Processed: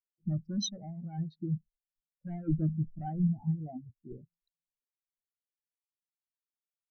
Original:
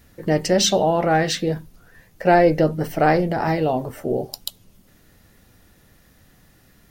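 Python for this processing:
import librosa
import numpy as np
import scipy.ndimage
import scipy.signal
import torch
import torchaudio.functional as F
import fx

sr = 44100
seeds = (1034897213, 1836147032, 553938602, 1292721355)

y = fx.wiener(x, sr, points=25)
y = fx.high_shelf(y, sr, hz=2600.0, db=-9.0)
y = 10.0 ** (-20.0 / 20.0) * np.tanh(y / 10.0 ** (-20.0 / 20.0))
y = fx.peak_eq(y, sr, hz=540.0, db=-12.5, octaves=1.7)
y = fx.hpss(y, sr, part='percussive', gain_db=8)
y = y + 10.0 ** (-20.0 / 20.0) * np.pad(y, (int(1067 * sr / 1000.0), 0))[:len(y)]
y = fx.spectral_expand(y, sr, expansion=4.0)
y = y * librosa.db_to_amplitude(-7.5)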